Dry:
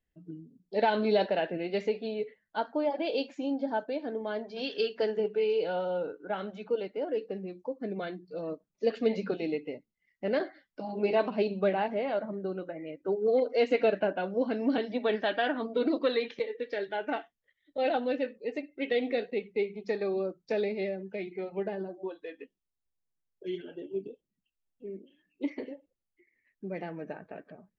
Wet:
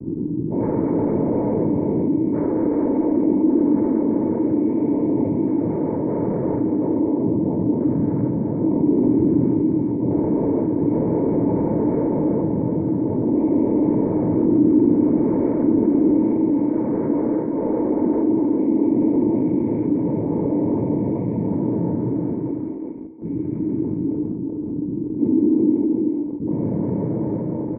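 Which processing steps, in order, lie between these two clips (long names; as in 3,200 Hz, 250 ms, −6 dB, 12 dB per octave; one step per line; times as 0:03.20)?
every bin's largest magnitude spread in time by 480 ms
high-shelf EQ 2,800 Hz −7.5 dB
comb filter 1.3 ms, depth 97%
brickwall limiter −12 dBFS, peak gain reduction 8.5 dB
cochlear-implant simulation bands 6
leveller curve on the samples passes 2
formant resonators in series u
high-frequency loss of the air 330 metres
phaser with its sweep stopped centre 1,900 Hz, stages 4
single-tap delay 381 ms −6.5 dB
convolution reverb RT60 0.70 s, pre-delay 3 ms, DRR 13 dB
envelope flattener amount 50%
level +7 dB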